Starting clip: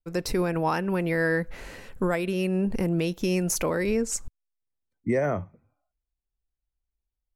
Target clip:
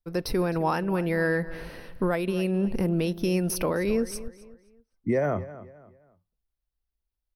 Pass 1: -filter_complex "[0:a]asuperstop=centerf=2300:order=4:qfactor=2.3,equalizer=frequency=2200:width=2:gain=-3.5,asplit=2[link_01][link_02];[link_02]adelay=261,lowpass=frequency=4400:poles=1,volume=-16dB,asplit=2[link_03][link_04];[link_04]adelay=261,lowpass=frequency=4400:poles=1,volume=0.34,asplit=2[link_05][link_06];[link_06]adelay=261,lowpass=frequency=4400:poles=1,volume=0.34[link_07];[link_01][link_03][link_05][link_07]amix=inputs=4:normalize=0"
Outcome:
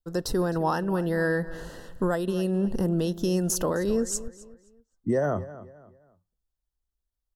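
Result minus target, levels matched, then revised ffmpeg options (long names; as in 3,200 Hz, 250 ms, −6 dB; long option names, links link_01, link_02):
8,000 Hz band +6.0 dB
-filter_complex "[0:a]asuperstop=centerf=7200:order=4:qfactor=2.3,equalizer=frequency=2200:width=2:gain=-3.5,asplit=2[link_01][link_02];[link_02]adelay=261,lowpass=frequency=4400:poles=1,volume=-16dB,asplit=2[link_03][link_04];[link_04]adelay=261,lowpass=frequency=4400:poles=1,volume=0.34,asplit=2[link_05][link_06];[link_06]adelay=261,lowpass=frequency=4400:poles=1,volume=0.34[link_07];[link_01][link_03][link_05][link_07]amix=inputs=4:normalize=0"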